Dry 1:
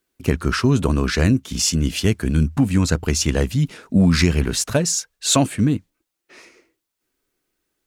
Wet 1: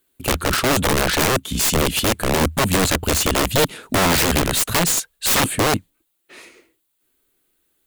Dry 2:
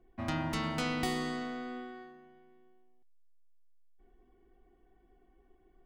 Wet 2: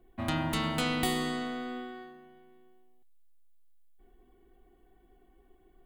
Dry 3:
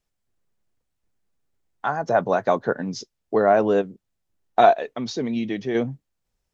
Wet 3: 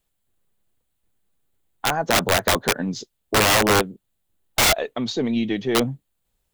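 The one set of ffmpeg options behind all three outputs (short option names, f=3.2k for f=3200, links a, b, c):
-af "aexciter=amount=1.1:drive=5.9:freq=3k,aeval=exprs='0.75*(cos(1*acos(clip(val(0)/0.75,-1,1)))-cos(1*PI/2))+0.0531*(cos(4*acos(clip(val(0)/0.75,-1,1)))-cos(4*PI/2))':c=same,aeval=exprs='(mod(5.31*val(0)+1,2)-1)/5.31':c=same,volume=3dB"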